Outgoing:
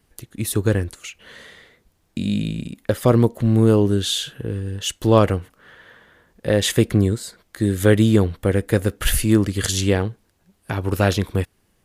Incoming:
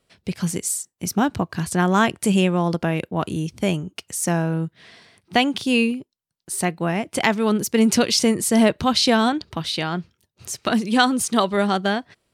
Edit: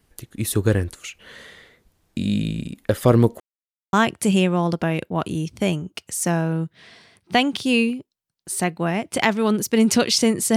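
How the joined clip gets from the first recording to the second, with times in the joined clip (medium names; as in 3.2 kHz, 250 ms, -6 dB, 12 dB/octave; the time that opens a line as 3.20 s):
outgoing
3.40–3.93 s: mute
3.93 s: go over to incoming from 1.94 s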